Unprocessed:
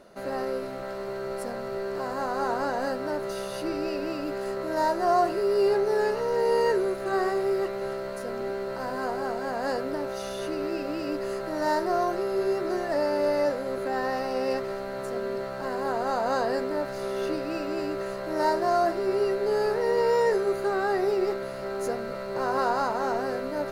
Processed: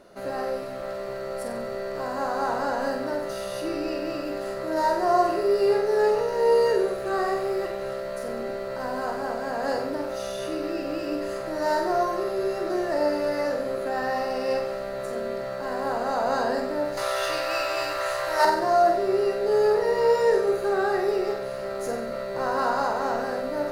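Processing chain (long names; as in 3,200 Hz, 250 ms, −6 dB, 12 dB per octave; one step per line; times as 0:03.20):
0:16.97–0:18.45: drawn EQ curve 120 Hz 0 dB, 190 Hz −23 dB, 840 Hz +10 dB
flutter between parallel walls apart 8.1 metres, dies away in 0.57 s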